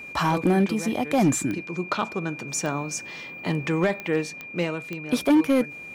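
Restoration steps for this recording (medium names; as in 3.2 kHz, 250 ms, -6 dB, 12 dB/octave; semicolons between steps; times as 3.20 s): clip repair -14 dBFS; de-click; band-stop 2.4 kHz, Q 30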